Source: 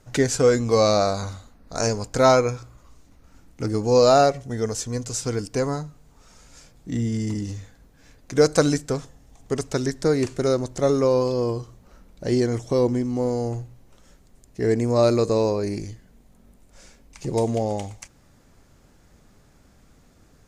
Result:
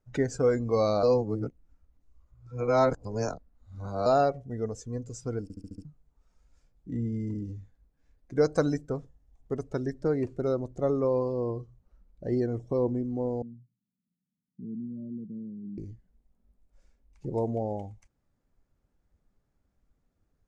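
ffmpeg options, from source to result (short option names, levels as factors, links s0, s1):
-filter_complex "[0:a]asettb=1/sr,asplit=3[s0][s1][s2];[s0]atrim=end=13.424[s3];[s1]atrim=start=13.42:end=15.78,asetpts=PTS-STARTPTS,afade=t=in:d=0.004:c=qsin,afade=t=out:st=2.356:d=0.004:c=qsin,asuperpass=centerf=190:order=4:qfactor=2.4[s4];[s2]atrim=start=15.776[s5];[s3][s4]acrossfade=d=0.004:c1=hsin:c2=qsin[s6];[s6][s5]acrossfade=d=0.004:c1=qsin:c2=hsin,asplit=9[s7][s8][s9][s10][s11][s12][s13][s14][s15];[s7]atrim=end=1.032[s16];[s8]atrim=start=1.028:end=4.062,asetpts=PTS-STARTPTS,areverse[s17];[s9]atrim=start=4.058:end=5.502[s18];[s10]atrim=start=5.428:end=5.502[s19];[s11]atrim=start=5.428:end=5.502[s20];[s12]atrim=start=5.428:end=5.502[s21];[s13]atrim=start=5.428:end=5.502[s22];[s14]atrim=start=5.428:end=5.502[s23];[s15]atrim=start=5.848[s24];[s16][s17]acrossfade=d=0.004:c1=hsin:c2=hsin[s25];[s25][s18]acrossfade=d=0.004:c1=hsin:c2=hsin[s26];[s26][s19]acrossfade=d=0.004:c1=hsin:c2=hsin[s27];[s27][s20]acrossfade=d=0.004:c1=hsin:c2=hsin[s28];[s28][s21]acrossfade=d=0.004:c1=hsin:c2=hsin[s29];[s29][s22]acrossfade=d=0.004:c1=hsin:c2=hsin[s30];[s30][s23]acrossfade=d=0.004:c1=hsin:c2=hsin[s31];[s31][s24]acrossfade=d=0.004:c1=hsin:c2=hsin,highshelf=f=2500:g=-8.5,afftdn=nr=15:nf=-36,volume=0.473"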